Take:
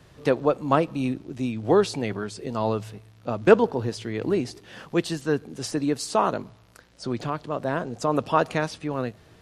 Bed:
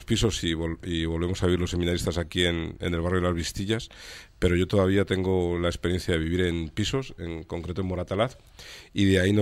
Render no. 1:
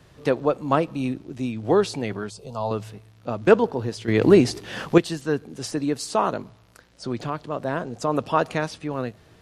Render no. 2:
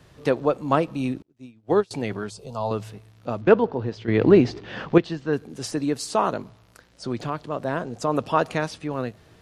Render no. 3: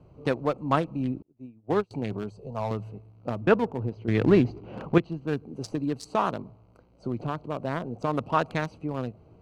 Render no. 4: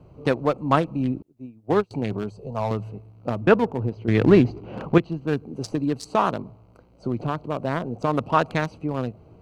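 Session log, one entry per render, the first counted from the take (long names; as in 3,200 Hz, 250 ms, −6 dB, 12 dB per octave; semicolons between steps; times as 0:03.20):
0:02.30–0:02.71: phaser with its sweep stopped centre 760 Hz, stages 4; 0:04.08–0:04.98: clip gain +10 dB
0:01.22–0:01.91: expander for the loud parts 2.5 to 1, over −37 dBFS; 0:03.41–0:05.33: high-frequency loss of the air 190 metres
adaptive Wiener filter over 25 samples; dynamic equaliser 450 Hz, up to −6 dB, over −31 dBFS, Q 0.77
level +4.5 dB; brickwall limiter −3 dBFS, peak gain reduction 1.5 dB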